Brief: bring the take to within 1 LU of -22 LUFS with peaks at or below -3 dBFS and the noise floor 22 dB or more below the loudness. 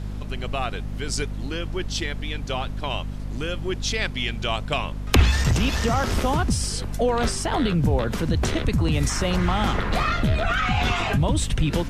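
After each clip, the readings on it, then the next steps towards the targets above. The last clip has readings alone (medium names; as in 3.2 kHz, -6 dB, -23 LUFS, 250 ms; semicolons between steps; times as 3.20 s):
hum 50 Hz; highest harmonic 250 Hz; hum level -29 dBFS; noise floor -31 dBFS; noise floor target -46 dBFS; loudness -24.0 LUFS; peak level -1.5 dBFS; loudness target -22.0 LUFS
-> de-hum 50 Hz, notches 5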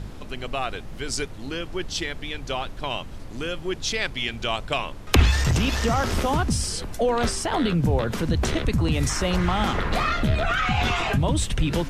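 hum not found; noise floor -37 dBFS; noise floor target -47 dBFS
-> noise print and reduce 10 dB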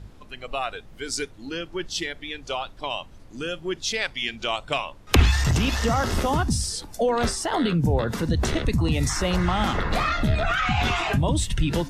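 noise floor -46 dBFS; noise floor target -47 dBFS
-> noise print and reduce 6 dB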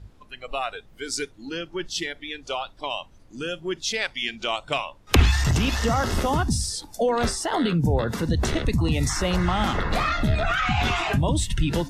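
noise floor -51 dBFS; loudness -25.0 LUFS; peak level -2.0 dBFS; loudness target -22.0 LUFS
-> trim +3 dB; peak limiter -3 dBFS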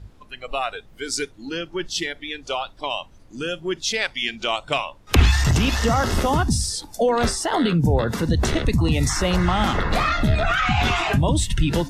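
loudness -22.0 LUFS; peak level -3.0 dBFS; noise floor -48 dBFS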